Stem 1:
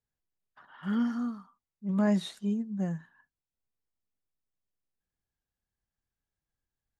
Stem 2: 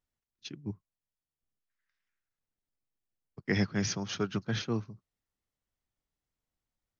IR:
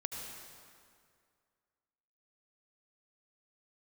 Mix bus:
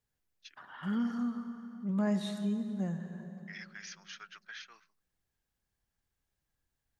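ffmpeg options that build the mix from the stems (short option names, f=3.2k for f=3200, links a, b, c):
-filter_complex "[0:a]volume=1dB,asplit=2[a][b];[b]volume=-4.5dB[c];[1:a]acontrast=72,highpass=f=1.7k:t=q:w=2.3,alimiter=limit=-18dB:level=0:latency=1:release=33,volume=-16.5dB[d];[2:a]atrim=start_sample=2205[e];[c][e]afir=irnorm=-1:irlink=0[f];[a][d][f]amix=inputs=3:normalize=0,acompressor=threshold=-44dB:ratio=1.5"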